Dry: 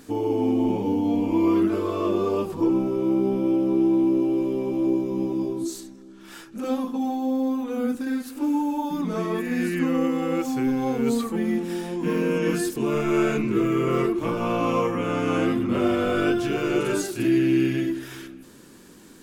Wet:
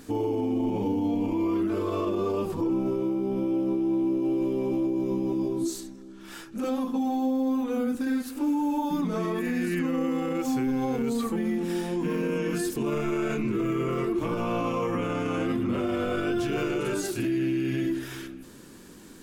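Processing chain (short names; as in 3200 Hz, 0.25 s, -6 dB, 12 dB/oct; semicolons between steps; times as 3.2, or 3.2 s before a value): low shelf 88 Hz +5.5 dB; limiter -20 dBFS, peak gain reduction 9 dB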